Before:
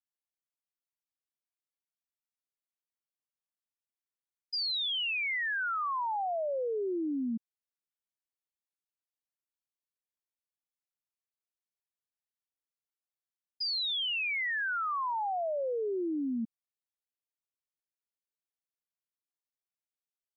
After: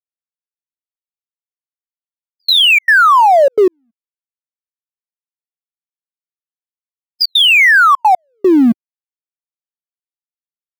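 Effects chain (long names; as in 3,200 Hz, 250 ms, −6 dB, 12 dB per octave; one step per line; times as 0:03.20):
mu-law and A-law mismatch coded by mu
high-pass filter 78 Hz 24 dB per octave
phase-vocoder stretch with locked phases 0.53×
gate pattern "xxxxx.x...xxx.x" 151 BPM −60 dB
boost into a limiter +34 dB
level −3.5 dB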